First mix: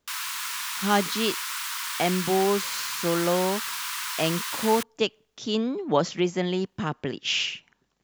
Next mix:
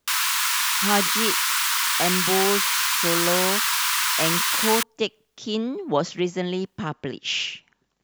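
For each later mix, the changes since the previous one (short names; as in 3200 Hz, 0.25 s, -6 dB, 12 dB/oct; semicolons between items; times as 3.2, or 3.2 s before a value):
background +9.5 dB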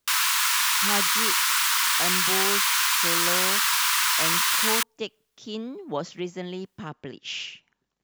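speech -7.5 dB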